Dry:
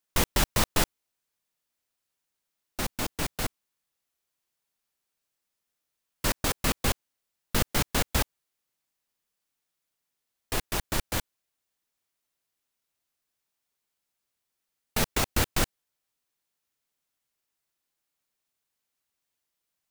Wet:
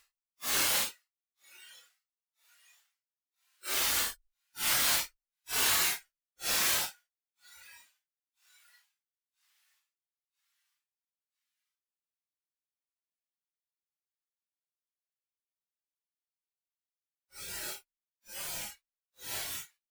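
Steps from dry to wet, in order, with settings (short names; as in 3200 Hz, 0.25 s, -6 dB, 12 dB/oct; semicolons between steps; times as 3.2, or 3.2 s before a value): HPF 1400 Hz 12 dB/oct; frequency-shifting echo 0.213 s, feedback 44%, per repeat +79 Hz, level -10 dB; added harmonics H 7 -15 dB, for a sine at -12.5 dBFS; Paulstretch 4.6×, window 0.05 s, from 6.74; spectral noise reduction 14 dB; gain +5.5 dB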